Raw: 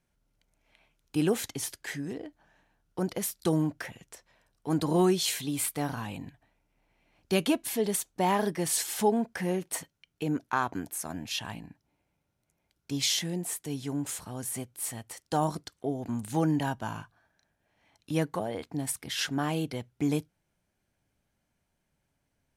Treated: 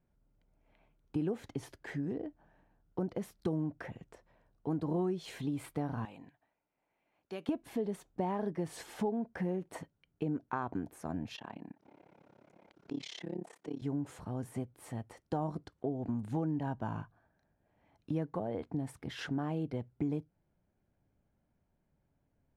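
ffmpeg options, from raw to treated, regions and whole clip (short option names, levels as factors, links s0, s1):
-filter_complex "[0:a]asettb=1/sr,asplit=3[s0][s1][s2];[s0]atrim=end=6.054[s3];[s1]atrim=start=6.05:end=7.49,asetpts=PTS-STARTPTS,afade=t=in:d=0.004:c=qsin,afade=t=out:st=1.436:d=0.004:c=qsin,highpass=f=1100:p=1,acompressor=threshold=0.00501:ratio=1.5:attack=3.2:release=140:knee=1:detection=peak[s4];[s2]atrim=start=7.486[s5];[s3][s4]acrossfade=d=0.004:c1=hsin:c2=qsin[s6];[s6][s5]acrossfade=d=0.004:c1=qsin:c2=hsin,asettb=1/sr,asplit=3[s7][s8][s9];[s7]atrim=end=11.364[s10];[s8]atrim=start=11.36:end=13.82,asetpts=PTS-STARTPTS,afade=t=in:d=0.004:c=qsin,afade=t=out:st=2.456:d=0.004:c=qsin,tremolo=f=34:d=0.974,highpass=280,lowpass=6800,acompressor=mode=upward:threshold=0.0126:ratio=2.5:attack=3.2:release=140:knee=2.83:detection=peak[s11];[s9]atrim=start=13.816[s12];[s10][s11]acrossfade=d=0.004:c1=hsin:c2=qsin[s13];[s13][s12]acrossfade=d=0.004:c1=qsin:c2=hsin,lowpass=f=2300:p=1,tiltshelf=f=1400:g=6.5,acompressor=threshold=0.0398:ratio=4,volume=0.631"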